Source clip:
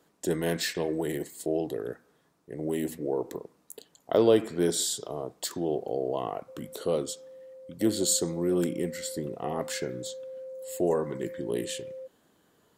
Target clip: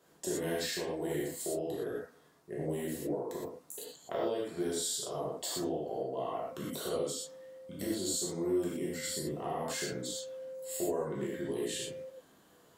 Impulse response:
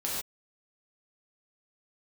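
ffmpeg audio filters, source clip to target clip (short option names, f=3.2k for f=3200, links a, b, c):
-filter_complex "[0:a]lowshelf=f=490:g=-3.5,acompressor=threshold=-36dB:ratio=6[a];[1:a]atrim=start_sample=2205,asetrate=52920,aresample=44100[b];[a][b]afir=irnorm=-1:irlink=0"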